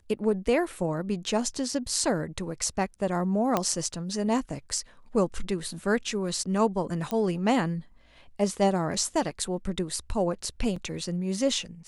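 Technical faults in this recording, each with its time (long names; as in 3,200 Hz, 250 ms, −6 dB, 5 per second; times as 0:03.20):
0:03.57: click −10 dBFS
0:07.11: click −16 dBFS
0:10.76: drop-out 4.1 ms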